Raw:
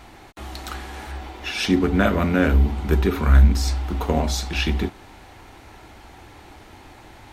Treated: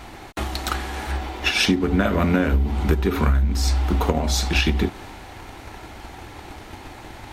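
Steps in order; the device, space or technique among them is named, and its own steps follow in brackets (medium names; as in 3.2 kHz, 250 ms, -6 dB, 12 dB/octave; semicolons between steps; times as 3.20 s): drum-bus smash (transient shaper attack +8 dB, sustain +2 dB; compression 12:1, threshold -19 dBFS, peak gain reduction 14.5 dB; saturation -11 dBFS, distortion -23 dB); trim +5 dB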